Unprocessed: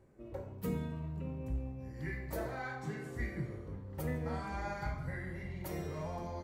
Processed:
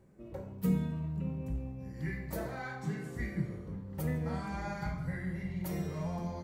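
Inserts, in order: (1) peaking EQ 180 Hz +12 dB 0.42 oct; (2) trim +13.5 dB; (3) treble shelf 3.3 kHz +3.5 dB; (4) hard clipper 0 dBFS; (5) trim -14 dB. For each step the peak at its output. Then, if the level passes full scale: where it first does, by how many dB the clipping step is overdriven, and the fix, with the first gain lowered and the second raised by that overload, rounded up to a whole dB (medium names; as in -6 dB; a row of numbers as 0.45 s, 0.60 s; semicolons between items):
-19.0 dBFS, -5.5 dBFS, -5.5 dBFS, -5.5 dBFS, -19.5 dBFS; nothing clips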